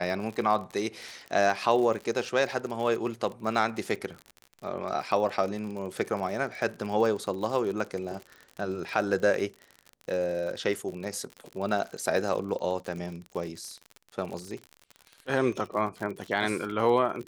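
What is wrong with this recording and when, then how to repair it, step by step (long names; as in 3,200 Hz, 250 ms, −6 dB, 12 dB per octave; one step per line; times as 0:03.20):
surface crackle 47 per second −34 dBFS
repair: click removal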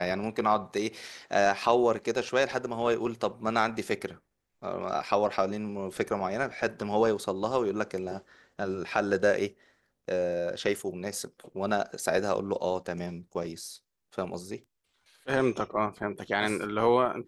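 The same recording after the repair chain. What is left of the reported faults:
none of them is left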